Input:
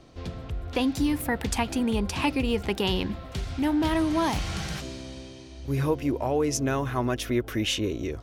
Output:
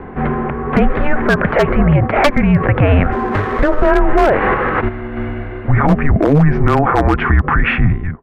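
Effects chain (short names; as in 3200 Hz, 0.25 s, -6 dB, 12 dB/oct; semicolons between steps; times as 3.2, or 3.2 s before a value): ending faded out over 0.60 s; 1.81–2.4 transient shaper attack +8 dB, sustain -6 dB; 4.54–5.17 level quantiser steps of 9 dB; mistuned SSB -290 Hz 330–2100 Hz; low shelf 140 Hz -2.5 dB; wavefolder -21 dBFS; maximiser +31 dB; 3.12–3.91 running maximum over 3 samples; gain -3 dB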